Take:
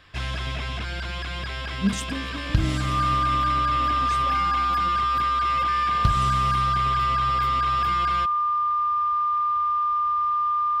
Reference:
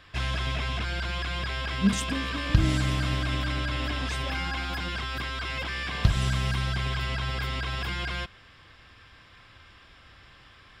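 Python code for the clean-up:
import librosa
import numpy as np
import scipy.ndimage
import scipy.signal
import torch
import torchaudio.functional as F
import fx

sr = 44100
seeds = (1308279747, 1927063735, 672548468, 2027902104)

y = fx.fix_declip(x, sr, threshold_db=-8.5)
y = fx.notch(y, sr, hz=1200.0, q=30.0)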